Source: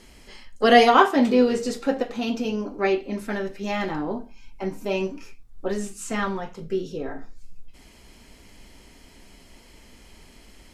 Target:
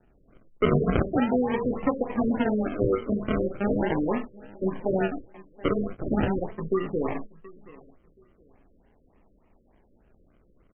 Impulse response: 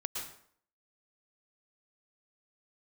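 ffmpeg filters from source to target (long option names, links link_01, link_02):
-filter_complex "[0:a]acrossover=split=120[link_01][link_02];[link_01]asoftclip=type=tanh:threshold=-39dB[link_03];[link_03][link_02]amix=inputs=2:normalize=0,acrusher=samples=40:mix=1:aa=0.000001:lfo=1:lforange=24:lforate=0.4,acompressor=threshold=-26dB:ratio=5,agate=range=-17dB:threshold=-38dB:ratio=16:detection=peak,aecho=1:1:726|1452:0.0794|0.0207,afftfilt=real='re*lt(b*sr/1024,570*pow(3300/570,0.5+0.5*sin(2*PI*3.4*pts/sr)))':imag='im*lt(b*sr/1024,570*pow(3300/570,0.5+0.5*sin(2*PI*3.4*pts/sr)))':win_size=1024:overlap=0.75,volume=5.5dB"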